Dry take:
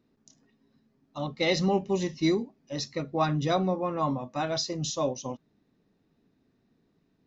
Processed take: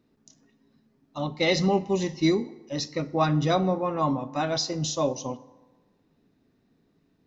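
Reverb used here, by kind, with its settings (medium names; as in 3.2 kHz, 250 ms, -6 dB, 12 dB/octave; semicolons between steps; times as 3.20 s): FDN reverb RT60 1.3 s, low-frequency decay 0.8×, high-frequency decay 0.55×, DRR 15 dB; trim +2.5 dB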